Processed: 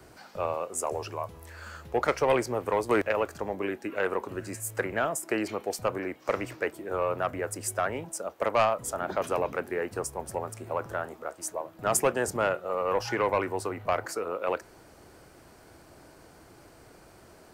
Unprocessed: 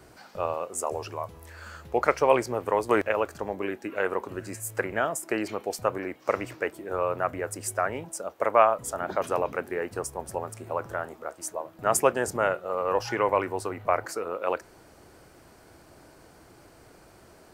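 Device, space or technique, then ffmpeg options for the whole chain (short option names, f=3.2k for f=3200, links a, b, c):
one-band saturation: -filter_complex "[0:a]acrossover=split=300|2100[a][b][c];[b]asoftclip=type=tanh:threshold=-18.5dB[d];[a][d][c]amix=inputs=3:normalize=0"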